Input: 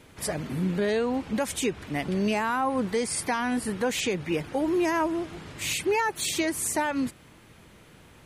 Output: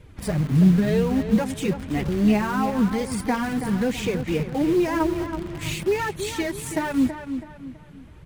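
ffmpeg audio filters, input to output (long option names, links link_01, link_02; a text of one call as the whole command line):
ffmpeg -i in.wav -filter_complex "[0:a]flanger=delay=1.7:depth=5.4:regen=6:speed=0.97:shape=triangular,bass=frequency=250:gain=14,treble=frequency=4000:gain=-5,asplit=2[link_01][link_02];[link_02]acrusher=bits=4:mix=0:aa=0.000001,volume=-10dB[link_03];[link_01][link_03]amix=inputs=2:normalize=0,asplit=2[link_04][link_05];[link_05]adelay=327,lowpass=frequency=3800:poles=1,volume=-9dB,asplit=2[link_06][link_07];[link_07]adelay=327,lowpass=frequency=3800:poles=1,volume=0.37,asplit=2[link_08][link_09];[link_09]adelay=327,lowpass=frequency=3800:poles=1,volume=0.37,asplit=2[link_10][link_11];[link_11]adelay=327,lowpass=frequency=3800:poles=1,volume=0.37[link_12];[link_04][link_06][link_08][link_10][link_12]amix=inputs=5:normalize=0" out.wav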